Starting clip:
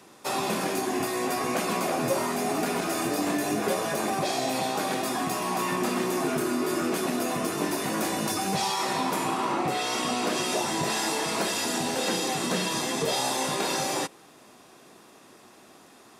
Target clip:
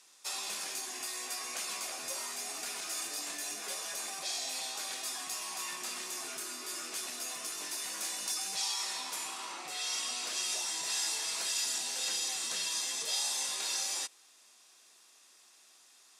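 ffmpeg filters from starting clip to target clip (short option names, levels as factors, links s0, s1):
-af "bandpass=f=6600:t=q:w=0.91:csg=0"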